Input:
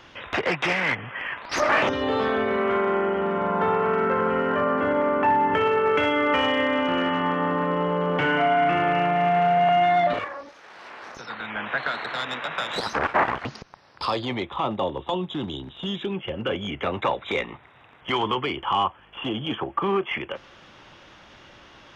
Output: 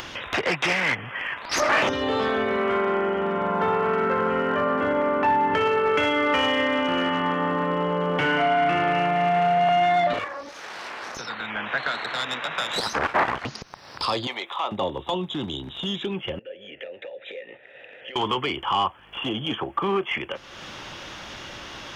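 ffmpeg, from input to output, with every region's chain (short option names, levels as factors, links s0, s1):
-filter_complex "[0:a]asettb=1/sr,asplit=3[s0][s1][s2];[s0]atrim=end=14.274[s3];[s1]atrim=start=14.27:end=14.72,asetpts=PTS-STARTPTS,afade=t=in:d=0.004:c=qsin,afade=t=out:st=0.446:d=0.004:c=qsin,highpass=640,acompressor=mode=upward:threshold=0.0316:ratio=2.5:attack=3.2:release=140:knee=2.83:detection=peak[s4];[s2]atrim=start=14.716[s5];[s3][s4]acrossfade=d=0.004:c1=hsin:c2=qsin[s6];[s6][s5]acrossfade=d=0.004:c1=qsin:c2=hsin,asettb=1/sr,asplit=3[s7][s8][s9];[s7]atrim=end=16.394[s10];[s8]atrim=start=16.39:end=18.16,asetpts=PTS-STARTPTS,afade=t=in:d=0.004:c=qsin,afade=t=out:st=1.766:d=0.004:c=qsin,acompressor=threshold=0.0251:ratio=12:attack=3.2:release=140:knee=1:detection=peak,asplit=3[s11][s12][s13];[s11]bandpass=f=530:t=q:w=8,volume=1[s14];[s12]bandpass=f=1840:t=q:w=8,volume=0.501[s15];[s13]bandpass=f=2480:t=q:w=8,volume=0.355[s16];[s14][s15][s16]amix=inputs=3:normalize=0[s17];[s9]atrim=start=18.156[s18];[s10][s17]acrossfade=d=0.004:c1=hsin:c2=qsin[s19];[s19][s18]acrossfade=d=0.004:c1=qsin:c2=hsin,acontrast=68,highshelf=f=4900:g=11,acompressor=mode=upward:threshold=0.0891:ratio=2.5,volume=0.447"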